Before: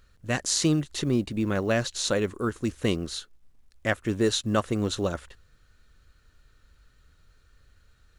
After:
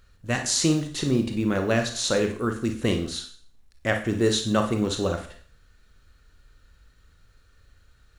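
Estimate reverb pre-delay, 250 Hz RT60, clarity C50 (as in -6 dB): 28 ms, 0.45 s, 7.5 dB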